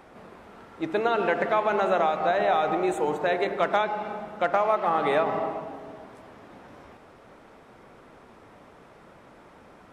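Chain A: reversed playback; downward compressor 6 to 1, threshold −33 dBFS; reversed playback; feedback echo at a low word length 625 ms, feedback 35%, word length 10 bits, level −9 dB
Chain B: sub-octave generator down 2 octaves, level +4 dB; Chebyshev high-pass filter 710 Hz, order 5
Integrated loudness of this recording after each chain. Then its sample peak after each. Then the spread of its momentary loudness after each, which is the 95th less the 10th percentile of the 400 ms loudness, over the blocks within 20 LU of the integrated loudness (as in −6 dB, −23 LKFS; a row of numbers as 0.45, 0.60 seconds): −36.5, −28.5 LKFS; −22.0, −13.0 dBFS; 16, 12 LU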